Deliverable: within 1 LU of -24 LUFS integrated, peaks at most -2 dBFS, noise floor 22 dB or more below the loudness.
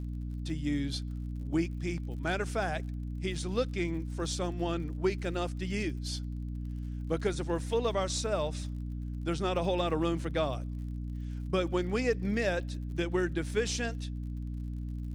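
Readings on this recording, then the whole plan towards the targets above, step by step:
tick rate 53 per s; hum 60 Hz; highest harmonic 300 Hz; hum level -34 dBFS; loudness -33.5 LUFS; peak level -16.5 dBFS; loudness target -24.0 LUFS
-> de-click; de-hum 60 Hz, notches 5; trim +9.5 dB

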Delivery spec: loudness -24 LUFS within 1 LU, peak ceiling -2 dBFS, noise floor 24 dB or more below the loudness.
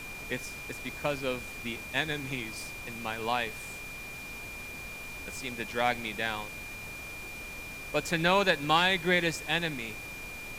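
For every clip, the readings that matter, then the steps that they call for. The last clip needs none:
steady tone 2.4 kHz; tone level -41 dBFS; noise floor -42 dBFS; noise floor target -56 dBFS; loudness -31.5 LUFS; peak level -9.5 dBFS; loudness target -24.0 LUFS
-> band-stop 2.4 kHz, Q 30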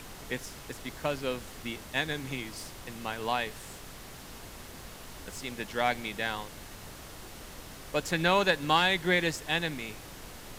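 steady tone not found; noise floor -47 dBFS; noise floor target -55 dBFS
-> noise print and reduce 8 dB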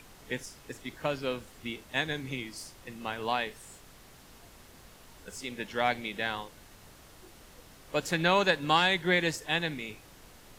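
noise floor -54 dBFS; noise floor target -55 dBFS
-> noise print and reduce 6 dB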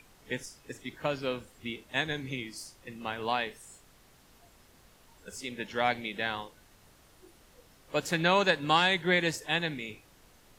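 noise floor -60 dBFS; loudness -30.5 LUFS; peak level -10.0 dBFS; loudness target -24.0 LUFS
-> trim +6.5 dB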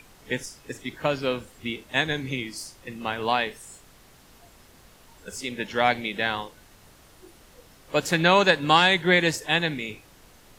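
loudness -24.0 LUFS; peak level -3.5 dBFS; noise floor -54 dBFS

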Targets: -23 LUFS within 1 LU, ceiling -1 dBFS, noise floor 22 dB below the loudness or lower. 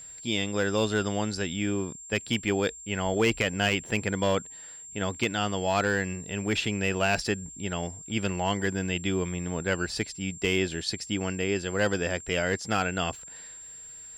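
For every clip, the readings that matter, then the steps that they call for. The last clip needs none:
clipped samples 0.2%; clipping level -16.5 dBFS; steady tone 7.4 kHz; tone level -42 dBFS; loudness -28.5 LUFS; peak level -16.5 dBFS; loudness target -23.0 LUFS
-> clip repair -16.5 dBFS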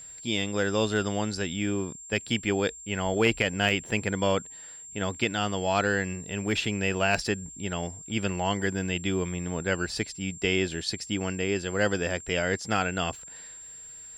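clipped samples 0.0%; steady tone 7.4 kHz; tone level -42 dBFS
-> band-stop 7.4 kHz, Q 30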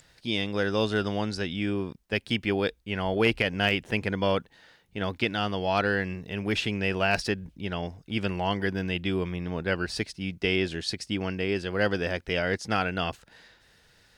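steady tone not found; loudness -28.5 LUFS; peak level -8.5 dBFS; loudness target -23.0 LUFS
-> trim +5.5 dB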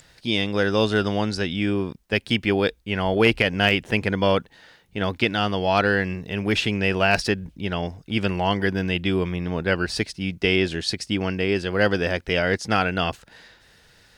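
loudness -23.0 LUFS; peak level -3.0 dBFS; noise floor -56 dBFS

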